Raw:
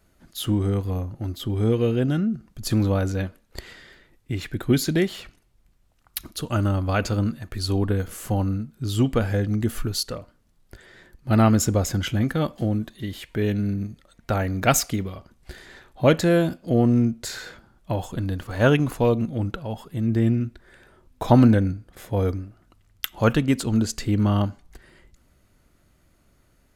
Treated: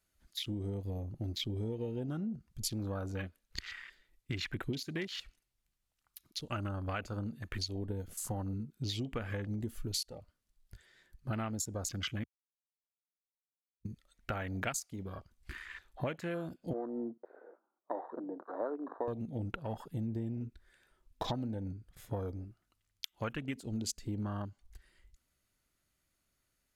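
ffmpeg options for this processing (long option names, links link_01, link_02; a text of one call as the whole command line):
ffmpeg -i in.wav -filter_complex "[0:a]asettb=1/sr,asplit=3[link_01][link_02][link_03];[link_01]atrim=end=16.734[link_04];[link_02]atrim=start=16.73:end=19.08,asetpts=PTS-STARTPTS,afade=type=in:duration=0.004:curve=qsin,afade=type=out:start_time=2.346:duration=0.004:curve=qsin,asuperpass=centerf=590:order=8:qfactor=0.64[link_05];[link_03]atrim=start=19.076[link_06];[link_04][link_05]acrossfade=duration=0.004:curve1=hsin:curve2=qsin[link_07];[link_07][link_06]acrossfade=duration=0.004:curve1=qsin:curve2=hsin,asplit=3[link_08][link_09][link_10];[link_08]atrim=end=12.24,asetpts=PTS-STARTPTS,afade=type=out:start_time=12.236:duration=0.004:curve=hsin[link_11];[link_09]atrim=start=12.24:end=13.85,asetpts=PTS-STARTPTS,volume=0[link_12];[link_10]atrim=start=13.85,asetpts=PTS-STARTPTS,afade=type=in:duration=0.004:curve=hsin[link_13];[link_11][link_12][link_13]concat=n=3:v=0:a=1,tiltshelf=frequency=1400:gain=-6.5,acompressor=threshold=-33dB:ratio=16,afwtdn=0.00708" out.wav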